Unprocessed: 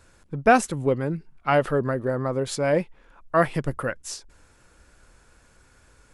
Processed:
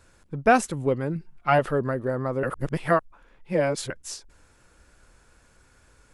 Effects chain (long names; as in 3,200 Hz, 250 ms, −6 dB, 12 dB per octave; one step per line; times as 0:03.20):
0:01.15–0:01.59: comb filter 5.7 ms, depth 63%
0:02.43–0:03.90: reverse
level −1.5 dB